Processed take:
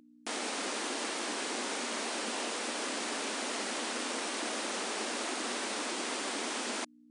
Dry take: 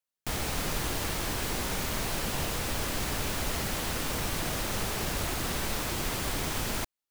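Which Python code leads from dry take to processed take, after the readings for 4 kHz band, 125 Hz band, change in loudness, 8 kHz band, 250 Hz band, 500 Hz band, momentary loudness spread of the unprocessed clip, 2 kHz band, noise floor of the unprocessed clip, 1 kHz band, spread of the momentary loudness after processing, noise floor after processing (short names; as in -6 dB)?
-1.5 dB, under -25 dB, -3.5 dB, -2.0 dB, -3.0 dB, -1.5 dB, 0 LU, -1.5 dB, under -85 dBFS, -1.5 dB, 0 LU, -59 dBFS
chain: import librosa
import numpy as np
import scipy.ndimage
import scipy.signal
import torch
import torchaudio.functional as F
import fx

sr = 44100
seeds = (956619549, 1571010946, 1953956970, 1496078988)

y = fx.add_hum(x, sr, base_hz=60, snr_db=15)
y = fx.brickwall_bandpass(y, sr, low_hz=210.0, high_hz=10000.0)
y = y * librosa.db_to_amplitude(-1.5)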